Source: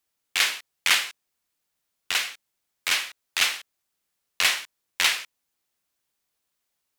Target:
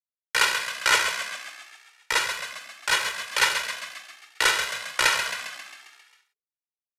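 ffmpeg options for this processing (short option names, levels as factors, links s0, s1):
-filter_complex "[0:a]acrusher=bits=7:mix=0:aa=0.000001,bandreject=f=50:t=h:w=6,bandreject=f=100:t=h:w=6,bandreject=f=150:t=h:w=6,bandreject=f=200:t=h:w=6,bandreject=f=250:t=h:w=6,afreqshift=-62,equalizer=f=2300:t=o:w=2.4:g=-4,asetrate=30296,aresample=44100,atempo=1.45565,aecho=1:1:2.1:0.97,asplit=9[s0][s1][s2][s3][s4][s5][s6][s7][s8];[s1]adelay=134,afreqshift=49,volume=0.422[s9];[s2]adelay=268,afreqshift=98,volume=0.248[s10];[s3]adelay=402,afreqshift=147,volume=0.146[s11];[s4]adelay=536,afreqshift=196,volume=0.0871[s12];[s5]adelay=670,afreqshift=245,volume=0.0513[s13];[s6]adelay=804,afreqshift=294,volume=0.0302[s14];[s7]adelay=938,afreqshift=343,volume=0.0178[s15];[s8]adelay=1072,afreqshift=392,volume=0.0105[s16];[s0][s9][s10][s11][s12][s13][s14][s15][s16]amix=inputs=9:normalize=0,volume=1.12"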